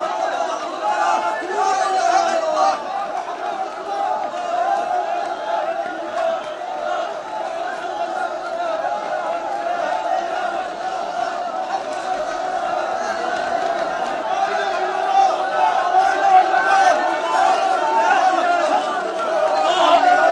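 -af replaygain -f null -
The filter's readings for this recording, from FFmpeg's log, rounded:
track_gain = -0.5 dB
track_peak = 0.559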